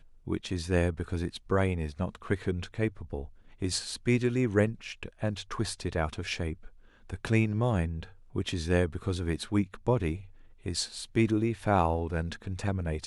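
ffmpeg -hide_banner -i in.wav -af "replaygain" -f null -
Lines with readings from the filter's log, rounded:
track_gain = +10.6 dB
track_peak = 0.198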